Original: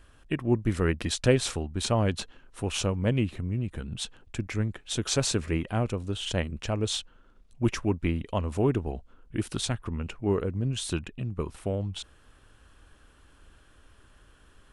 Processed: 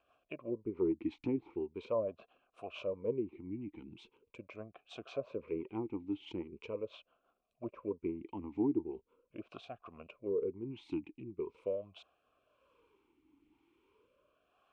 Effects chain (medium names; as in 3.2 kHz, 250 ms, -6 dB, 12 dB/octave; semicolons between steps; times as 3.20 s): low-pass that closes with the level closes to 850 Hz, closed at -21.5 dBFS; rotary cabinet horn 6 Hz, later 1 Hz, at 9.09 s; talking filter a-u 0.41 Hz; trim +4 dB